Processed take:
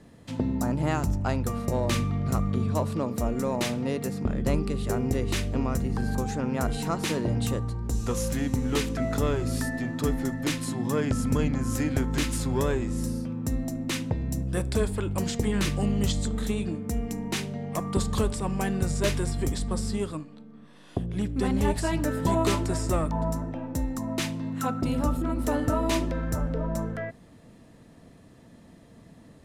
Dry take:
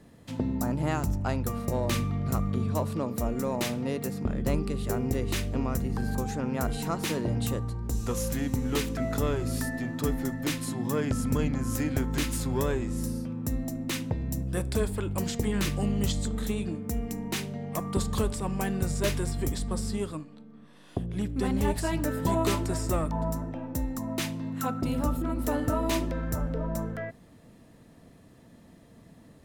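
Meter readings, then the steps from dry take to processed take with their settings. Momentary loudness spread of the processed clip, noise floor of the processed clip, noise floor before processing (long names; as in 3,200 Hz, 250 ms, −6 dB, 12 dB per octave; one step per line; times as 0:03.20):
5 LU, −52 dBFS, −54 dBFS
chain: low-pass filter 11,000 Hz 12 dB per octave
level +2 dB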